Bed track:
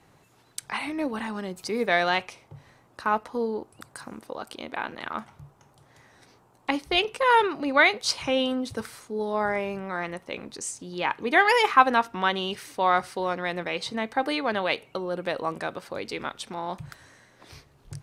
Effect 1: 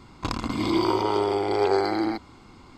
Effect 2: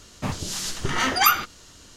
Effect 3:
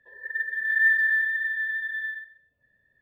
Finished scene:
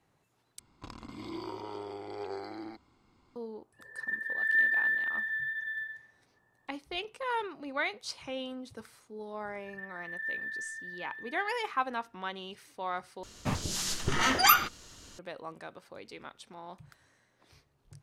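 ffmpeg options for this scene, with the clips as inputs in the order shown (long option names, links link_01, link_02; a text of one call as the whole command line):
ffmpeg -i bed.wav -i cue0.wav -i cue1.wav -i cue2.wav -filter_complex "[3:a]asplit=2[link_01][link_02];[0:a]volume=-13.5dB,asplit=3[link_03][link_04][link_05];[link_03]atrim=end=0.594[link_06];[1:a]atrim=end=2.77,asetpts=PTS-STARTPTS,volume=-17.5dB[link_07];[link_04]atrim=start=3.356:end=13.234[link_08];[2:a]atrim=end=1.96,asetpts=PTS-STARTPTS,volume=-3.5dB[link_09];[link_05]atrim=start=15.186[link_10];[link_01]atrim=end=3.01,asetpts=PTS-STARTPTS,volume=-5.5dB,afade=type=in:duration=0.004:curve=hsin,afade=type=out:start_time=3.006:duration=0.004:curve=hsin,adelay=164493S[link_11];[link_02]atrim=end=3.01,asetpts=PTS-STARTPTS,volume=-16dB,afade=type=in:duration=0.004:curve=hsin,afade=type=out:start_time=3.006:duration=0.004:curve=hsin,adelay=9430[link_12];[link_06][link_07]acrossfade=duration=0.004:curve1=hsin:curve2=hsin[link_13];[link_13][link_08]acrossfade=duration=0.004:curve1=hsin:curve2=hsin[link_14];[link_14][link_09]acrossfade=duration=0.004:curve1=hsin:curve2=hsin[link_15];[link_15][link_10]acrossfade=duration=0.004:curve1=hsin:curve2=hsin[link_16];[link_16][link_11][link_12]amix=inputs=3:normalize=0" out.wav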